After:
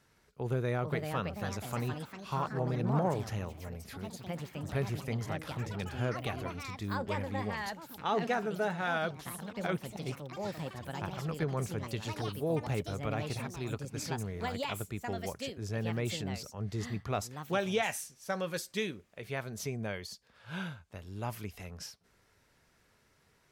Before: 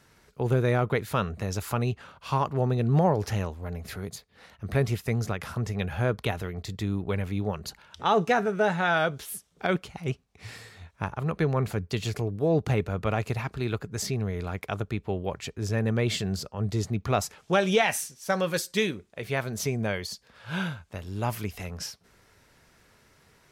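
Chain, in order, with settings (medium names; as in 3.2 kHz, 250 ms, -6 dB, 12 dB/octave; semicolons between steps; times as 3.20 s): ever faster or slower copies 520 ms, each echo +4 st, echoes 3, each echo -6 dB; trim -8.5 dB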